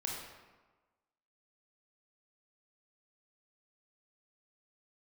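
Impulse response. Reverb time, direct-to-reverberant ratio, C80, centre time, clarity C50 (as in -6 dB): 1.3 s, -2.0 dB, 3.5 dB, 66 ms, 1.5 dB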